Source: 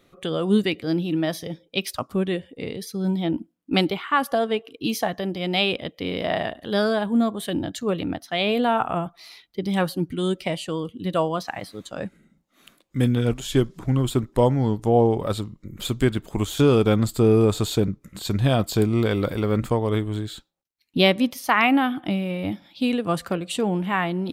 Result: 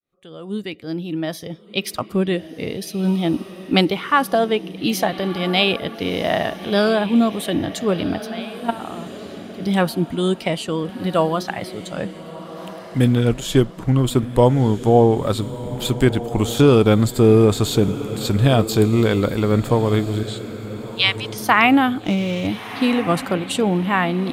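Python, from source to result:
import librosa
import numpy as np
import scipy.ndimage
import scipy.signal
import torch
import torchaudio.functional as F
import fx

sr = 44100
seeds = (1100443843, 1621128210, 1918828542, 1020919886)

p1 = fx.fade_in_head(x, sr, length_s=2.28)
p2 = fx.level_steps(p1, sr, step_db=19, at=(8.26, 9.6), fade=0.02)
p3 = fx.ellip_bandpass(p2, sr, low_hz=1000.0, high_hz=9000.0, order=3, stop_db=40, at=(20.23, 21.38))
p4 = p3 + fx.echo_diffused(p3, sr, ms=1366, feedback_pct=41, wet_db=-13.5, dry=0)
p5 = fx.running_max(p4, sr, window=3, at=(22.04, 22.47))
y = p5 * librosa.db_to_amplitude(4.5)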